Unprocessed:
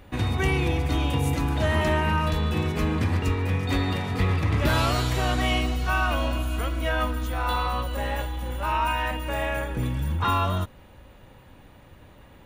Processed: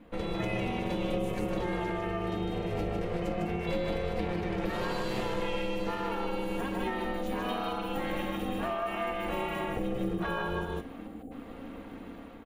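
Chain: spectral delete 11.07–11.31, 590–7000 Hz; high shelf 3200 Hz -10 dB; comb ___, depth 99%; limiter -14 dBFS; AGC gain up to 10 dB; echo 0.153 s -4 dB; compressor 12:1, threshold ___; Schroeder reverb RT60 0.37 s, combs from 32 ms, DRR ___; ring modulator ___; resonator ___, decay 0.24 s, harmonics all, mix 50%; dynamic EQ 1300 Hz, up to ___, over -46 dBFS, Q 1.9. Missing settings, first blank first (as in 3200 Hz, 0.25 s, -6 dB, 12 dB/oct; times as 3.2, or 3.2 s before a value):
4.4 ms, -20 dBFS, 14.5 dB, 260 Hz, 270 Hz, -5 dB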